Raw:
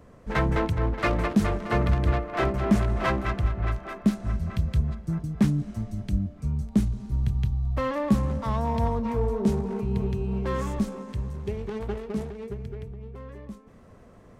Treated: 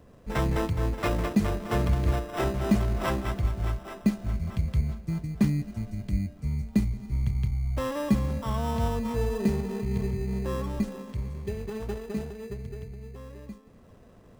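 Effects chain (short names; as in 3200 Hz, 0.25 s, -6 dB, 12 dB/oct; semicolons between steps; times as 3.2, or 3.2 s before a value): 10.11–10.83 LPF 1400 Hz; in parallel at -4 dB: sample-and-hold 20×; on the sum: gain -6 dB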